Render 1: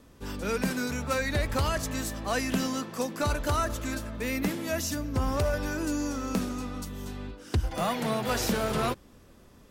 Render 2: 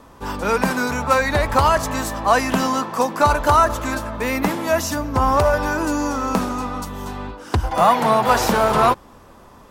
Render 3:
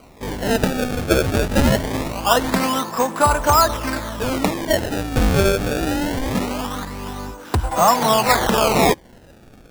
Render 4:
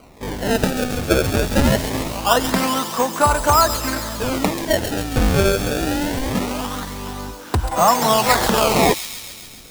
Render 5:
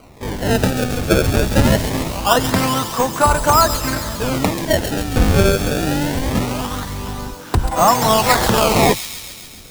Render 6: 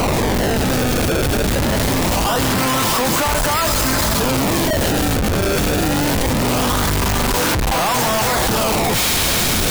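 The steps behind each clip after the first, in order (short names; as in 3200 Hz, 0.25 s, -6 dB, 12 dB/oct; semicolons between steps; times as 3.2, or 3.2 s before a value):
bell 940 Hz +13.5 dB 1.2 oct; gain +6 dB
decimation with a swept rate 25×, swing 160% 0.23 Hz
thin delay 0.136 s, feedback 69%, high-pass 3600 Hz, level -4.5 dB
octaver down 1 oct, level -2 dB; gain +1.5 dB
infinite clipping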